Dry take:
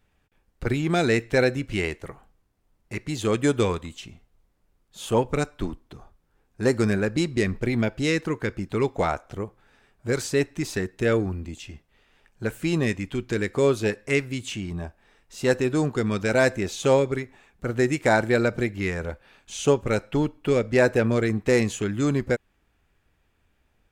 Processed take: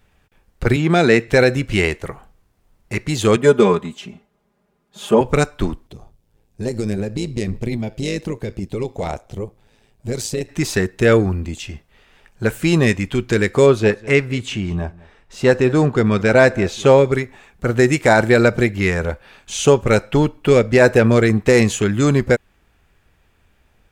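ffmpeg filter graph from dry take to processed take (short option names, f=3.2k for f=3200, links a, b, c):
-filter_complex "[0:a]asettb=1/sr,asplit=3[a][b][c];[a]atrim=end=0.764[d];[b]atrim=start=0.76:end=1.28,asetpts=PTS-STARTPTS,afade=t=in:d=0.004:c=qsin,afade=t=out:st=0.516:d=0.004:c=qsin,highpass=f=130:w=0.5412,highpass=f=130:w=1.3066,highshelf=f=6.1k:g=-9.5[e];[c]atrim=start=1.276[f];[d][e]acrossfade=d=0.004:c1=hsin:c2=qsin[g];[g][f]acrossfade=d=0.004:c1=qsin:c2=hsin,asettb=1/sr,asplit=3[h][i][j];[h]atrim=end=3.364[k];[i]atrim=start=3.36:end=5.21,asetpts=PTS-STARTPTS,afade=t=in:d=0.004:c=qsin,afade=t=out:st=1.846:d=0.004:c=qsin,highpass=150,highshelf=f=2.3k:g=-11.5,aecho=1:1:4.9:0.93,atrim=end_sample=81585[l];[j]atrim=start=5.206[m];[k][l]acrossfade=d=0.004:c1=hsin:c2=qsin[n];[n][m]acrossfade=d=0.004:c1=qsin:c2=hsin,asettb=1/sr,asplit=3[o][p][q];[o]atrim=end=5.874[r];[p]atrim=start=5.87:end=10.49,asetpts=PTS-STARTPTS,afade=t=in:d=0.004:c=qsin,afade=t=out:st=4.616:d=0.004:c=qsin,equalizer=f=1.4k:w=1.2:g=-13,acompressor=threshold=-25dB:ratio=4:attack=3.2:release=140:knee=1:detection=peak,tremolo=f=110:d=0.621[s];[q]atrim=start=10.486[t];[r][s]acrossfade=d=0.004:c1=hsin:c2=qsin[u];[u][t]acrossfade=d=0.004:c1=qsin:c2=hsin,asettb=1/sr,asplit=3[v][w][x];[v]atrim=end=13.664[y];[w]atrim=start=13.66:end=17.05,asetpts=PTS-STARTPTS,afade=t=in:d=0.004:c=qsin,afade=t=out:st=3.386:d=0.004:c=qsin,lowpass=f=3k:p=1,aecho=1:1:200:0.0794,atrim=end_sample=149499[z];[x]atrim=start=17.046[aa];[y][z]acrossfade=d=0.004:c1=hsin:c2=qsin[ab];[ab][aa]acrossfade=d=0.004:c1=qsin:c2=hsin,equalizer=f=290:w=3.9:g=-3.5,alimiter=level_in=10.5dB:limit=-1dB:release=50:level=0:latency=1,volume=-1dB"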